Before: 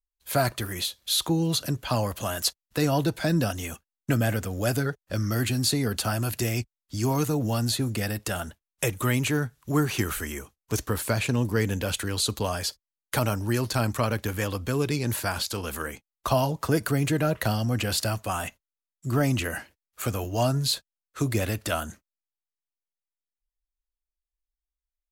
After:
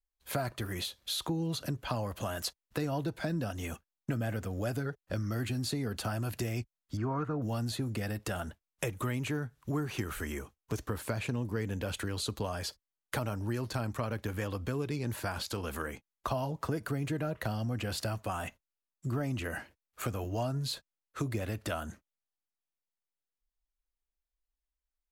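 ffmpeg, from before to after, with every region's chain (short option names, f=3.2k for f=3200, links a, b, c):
-filter_complex "[0:a]asettb=1/sr,asplit=3[a][b][c];[a]atrim=end=6.974[d];[b]atrim=start=6.97:end=7.42,asetpts=PTS-STARTPTS,afade=t=in:d=0.004:c=qsin,afade=t=out:st=0.446:d=0.004:c=qsin,lowpass=f=1.4k:t=q:w=3.1,aemphasis=mode=production:type=50fm,bandreject=f=850:w=8.8[e];[c]atrim=start=7.416[f];[d][e]acrossfade=d=0.004:c1=hsin:c2=qsin[g];[g][f]acrossfade=d=0.004:c1=qsin:c2=hsin,highshelf=f=3.1k:g=-8.5,acompressor=threshold=-33dB:ratio=3"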